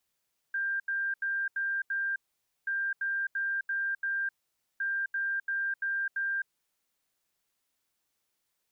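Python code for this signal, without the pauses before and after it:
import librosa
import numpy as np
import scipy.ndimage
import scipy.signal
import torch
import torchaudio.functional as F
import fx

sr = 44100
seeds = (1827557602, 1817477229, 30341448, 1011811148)

y = fx.beep_pattern(sr, wave='sine', hz=1590.0, on_s=0.26, off_s=0.08, beeps=5, pause_s=0.51, groups=3, level_db=-28.0)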